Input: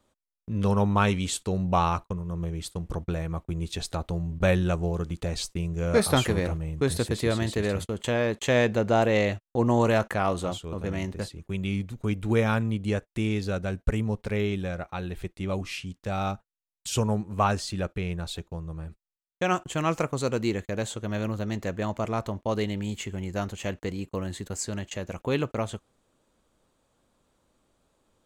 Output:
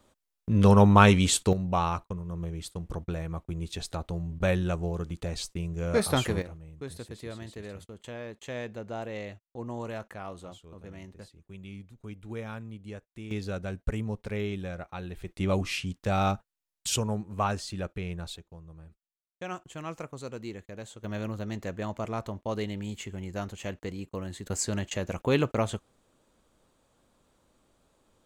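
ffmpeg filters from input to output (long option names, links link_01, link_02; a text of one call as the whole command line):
ffmpeg -i in.wav -af "asetnsamples=nb_out_samples=441:pad=0,asendcmd='1.53 volume volume -3.5dB;6.42 volume volume -14.5dB;13.31 volume volume -5dB;15.28 volume volume 3dB;16.96 volume volume -4.5dB;18.36 volume volume -12dB;21.04 volume volume -4.5dB;24.47 volume volume 2dB',volume=5.5dB" out.wav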